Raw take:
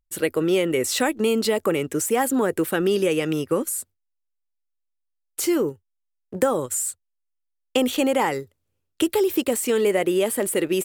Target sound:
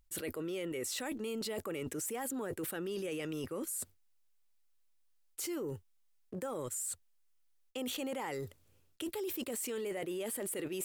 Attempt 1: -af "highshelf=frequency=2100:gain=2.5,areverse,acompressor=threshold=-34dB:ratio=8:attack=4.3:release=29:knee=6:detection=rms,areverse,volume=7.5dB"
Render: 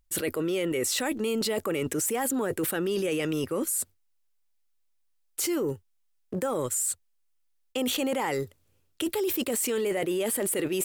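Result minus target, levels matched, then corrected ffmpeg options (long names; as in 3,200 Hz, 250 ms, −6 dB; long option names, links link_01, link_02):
downward compressor: peak gain reduction −10.5 dB
-af "highshelf=frequency=2100:gain=2.5,areverse,acompressor=threshold=-46dB:ratio=8:attack=4.3:release=29:knee=6:detection=rms,areverse,volume=7.5dB"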